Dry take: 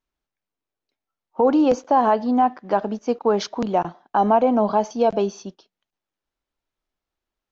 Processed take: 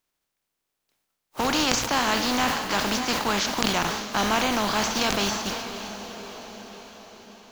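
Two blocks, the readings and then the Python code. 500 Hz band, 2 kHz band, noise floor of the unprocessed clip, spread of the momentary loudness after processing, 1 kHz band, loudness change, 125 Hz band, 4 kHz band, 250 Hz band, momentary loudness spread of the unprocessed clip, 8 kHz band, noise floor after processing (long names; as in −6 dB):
−10.0 dB, +11.0 dB, below −85 dBFS, 17 LU, −5.5 dB, −3.5 dB, +0.5 dB, +14.5 dB, −6.0 dB, 8 LU, can't be measured, −82 dBFS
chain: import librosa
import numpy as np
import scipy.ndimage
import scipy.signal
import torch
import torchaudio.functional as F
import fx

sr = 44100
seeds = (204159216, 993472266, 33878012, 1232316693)

p1 = fx.spec_flatten(x, sr, power=0.39)
p2 = fx.over_compress(p1, sr, threshold_db=-26.0, ratio=-1.0)
p3 = p1 + (p2 * librosa.db_to_amplitude(0.5))
p4 = fx.hum_notches(p3, sr, base_hz=60, count=2)
p5 = p4 + fx.echo_diffused(p4, sr, ms=607, feedback_pct=52, wet_db=-11, dry=0)
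p6 = fx.dynamic_eq(p5, sr, hz=490.0, q=1.1, threshold_db=-32.0, ratio=4.0, max_db=-6)
p7 = fx.sustainer(p6, sr, db_per_s=45.0)
y = p7 * librosa.db_to_amplitude(-6.5)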